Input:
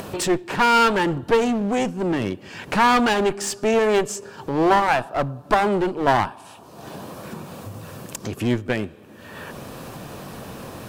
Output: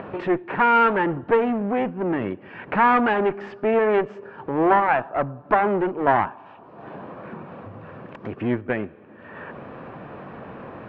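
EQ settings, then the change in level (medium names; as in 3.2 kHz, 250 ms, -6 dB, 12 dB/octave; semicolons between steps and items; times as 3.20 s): low-pass 2.2 kHz 24 dB/octave; bass shelf 110 Hz -11 dB; 0.0 dB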